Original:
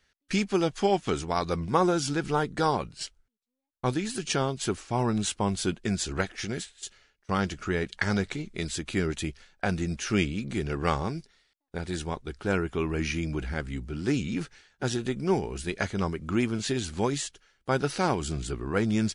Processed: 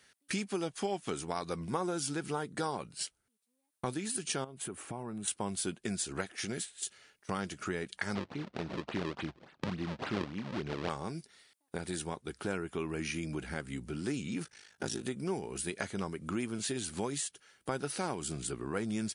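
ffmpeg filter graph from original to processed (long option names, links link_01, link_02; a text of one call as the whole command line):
ffmpeg -i in.wav -filter_complex "[0:a]asettb=1/sr,asplit=3[link_01][link_02][link_03];[link_01]atrim=end=4.444[link_04];[link_02]atrim=start=4.44:end=5.28,asetpts=PTS-STARTPTS,afade=type=in:duration=0.004:curve=qsin,afade=type=out:start_time=0.836:duration=0.004:curve=qsin,equalizer=frequency=5100:width=0.92:gain=-13.5,acompressor=threshold=-39dB:ratio=3:attack=3.2:release=140:knee=1:detection=peak,highpass=45[link_05];[link_03]atrim=start=5.276[link_06];[link_04][link_05]acrossfade=duration=0.004:curve1=hsin:curve2=qsin[link_07];[link_07][link_06]acrossfade=duration=0.004:curve1=qsin:curve2=hsin,asettb=1/sr,asplit=3[link_08][link_09][link_10];[link_08]atrim=end=8.154[link_11];[link_09]atrim=start=8.15:end=10.9,asetpts=PTS-STARTPTS,afade=type=in:duration=0.004:curve=qsin,afade=type=out:start_time=2.746:duration=0.004:curve=qsin,acrusher=samples=35:mix=1:aa=0.000001:lfo=1:lforange=56:lforate=3.5,lowpass=frequency=4700:width=0.5412,lowpass=frequency=4700:width=1.3066[link_12];[link_10]atrim=start=10.896[link_13];[link_11][link_12]acrossfade=duration=0.004:curve1=hsin:curve2=qsin[link_14];[link_14][link_13]acrossfade=duration=0.004:curve1=qsin:curve2=hsin,asettb=1/sr,asplit=3[link_15][link_16][link_17];[link_15]atrim=end=14.434[link_18];[link_16]atrim=start=14.43:end=15.03,asetpts=PTS-STARTPTS,afade=type=in:duration=0.004:curve=qsin,afade=type=out:start_time=0.596:duration=0.004:curve=qsin,equalizer=frequency=5500:width=4.6:gain=5.5,aeval=exprs='val(0)*sin(2*PI*26*n/s)':channel_layout=same[link_19];[link_17]atrim=start=15.026[link_20];[link_18][link_19]acrossfade=duration=0.004:curve1=hsin:curve2=qsin[link_21];[link_21][link_20]acrossfade=duration=0.004:curve1=qsin:curve2=hsin,highpass=130,equalizer=frequency=9400:width=2.4:gain=13,acompressor=threshold=-45dB:ratio=2.5,volume=5.5dB" out.wav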